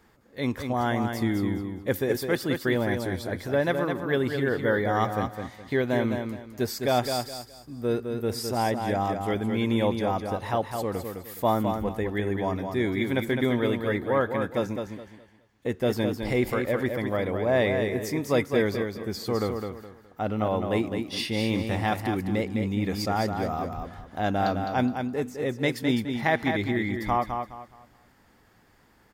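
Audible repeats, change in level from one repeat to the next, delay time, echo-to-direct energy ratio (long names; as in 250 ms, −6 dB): 3, −11.0 dB, 209 ms, −5.5 dB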